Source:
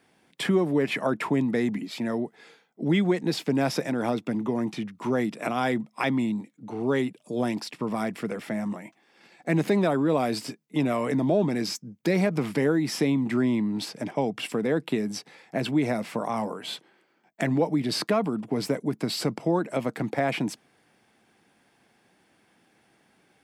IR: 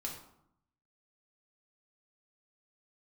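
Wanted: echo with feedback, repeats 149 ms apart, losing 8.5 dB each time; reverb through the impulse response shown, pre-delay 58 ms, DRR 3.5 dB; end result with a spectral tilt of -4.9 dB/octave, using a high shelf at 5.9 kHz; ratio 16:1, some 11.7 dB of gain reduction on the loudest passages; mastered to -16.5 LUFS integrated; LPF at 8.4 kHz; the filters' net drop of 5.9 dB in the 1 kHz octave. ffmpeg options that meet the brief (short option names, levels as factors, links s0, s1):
-filter_complex "[0:a]lowpass=8400,equalizer=f=1000:t=o:g=-9,highshelf=f=5900:g=8,acompressor=threshold=0.0282:ratio=16,aecho=1:1:149|298|447|596:0.376|0.143|0.0543|0.0206,asplit=2[s0][s1];[1:a]atrim=start_sample=2205,adelay=58[s2];[s1][s2]afir=irnorm=-1:irlink=0,volume=0.708[s3];[s0][s3]amix=inputs=2:normalize=0,volume=6.68"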